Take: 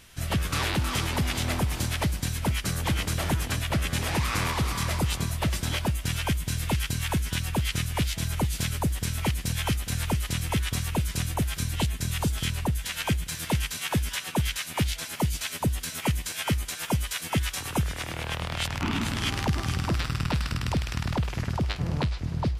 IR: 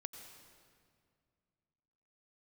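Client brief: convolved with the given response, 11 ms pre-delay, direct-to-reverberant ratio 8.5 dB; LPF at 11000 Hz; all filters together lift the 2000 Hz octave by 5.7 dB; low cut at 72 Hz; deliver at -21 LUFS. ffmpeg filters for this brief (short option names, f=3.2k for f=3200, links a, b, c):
-filter_complex "[0:a]highpass=72,lowpass=11k,equalizer=f=2k:t=o:g=7,asplit=2[a][b];[1:a]atrim=start_sample=2205,adelay=11[c];[b][c]afir=irnorm=-1:irlink=0,volume=-5dB[d];[a][d]amix=inputs=2:normalize=0,volume=6dB"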